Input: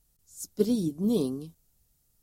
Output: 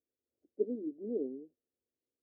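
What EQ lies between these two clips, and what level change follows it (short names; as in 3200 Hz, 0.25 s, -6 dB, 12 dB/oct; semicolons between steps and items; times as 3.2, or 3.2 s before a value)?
Butterworth band-pass 360 Hz, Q 0.93; air absorption 160 m; fixed phaser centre 420 Hz, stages 4; -5.5 dB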